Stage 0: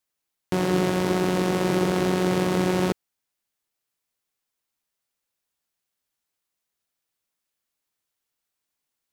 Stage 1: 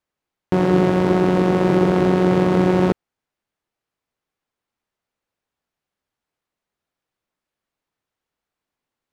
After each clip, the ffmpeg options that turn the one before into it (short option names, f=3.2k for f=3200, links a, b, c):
-af "lowpass=f=1.3k:p=1,volume=7dB"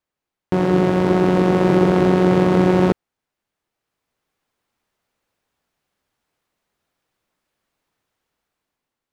-af "dynaudnorm=f=420:g=5:m=9dB,volume=-1dB"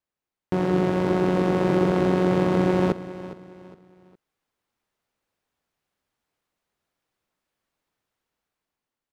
-af "aecho=1:1:411|822|1233:0.178|0.0605|0.0206,volume=-5.5dB"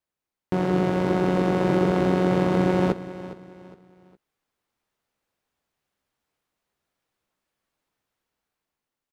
-filter_complex "[0:a]asplit=2[a][b];[b]adelay=15,volume=-13dB[c];[a][c]amix=inputs=2:normalize=0"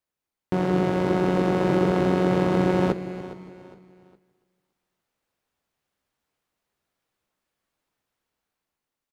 -af "aecho=1:1:286|572|858:0.133|0.052|0.0203"